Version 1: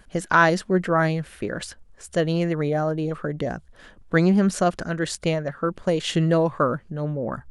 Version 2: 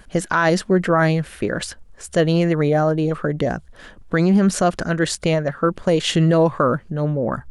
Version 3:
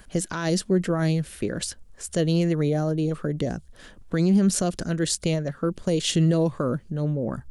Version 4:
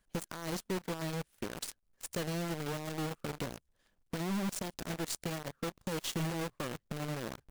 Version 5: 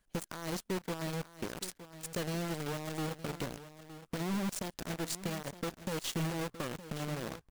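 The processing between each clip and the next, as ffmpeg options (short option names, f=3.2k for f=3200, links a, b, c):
-af "alimiter=level_in=12.5dB:limit=-1dB:release=50:level=0:latency=1,volume=-6.5dB"
-filter_complex "[0:a]highshelf=f=5k:g=6,acrossover=split=480|3000[a][b][c];[b]acompressor=threshold=-52dB:ratio=1.5[d];[a][d][c]amix=inputs=3:normalize=0,volume=-3.5dB"
-af "acompressor=threshold=-30dB:ratio=2.5,acrusher=bits=2:mode=log:mix=0:aa=0.000001,aeval=exprs='0.133*(cos(1*acos(clip(val(0)/0.133,-1,1)))-cos(1*PI/2))+0.0266*(cos(2*acos(clip(val(0)/0.133,-1,1)))-cos(2*PI/2))+0.0211*(cos(7*acos(clip(val(0)/0.133,-1,1)))-cos(7*PI/2))':c=same,volume=-5.5dB"
-af "aecho=1:1:915:0.211"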